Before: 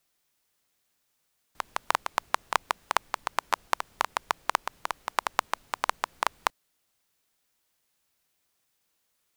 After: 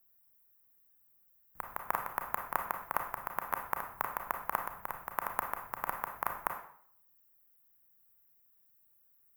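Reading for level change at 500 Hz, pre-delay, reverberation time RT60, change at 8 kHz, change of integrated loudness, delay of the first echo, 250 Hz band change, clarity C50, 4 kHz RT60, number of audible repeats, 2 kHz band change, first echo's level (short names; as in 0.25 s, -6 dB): -6.5 dB, 29 ms, 0.60 s, -10.5 dB, -6.5 dB, none, -4.0 dB, 7.0 dB, 0.50 s, none, -7.5 dB, none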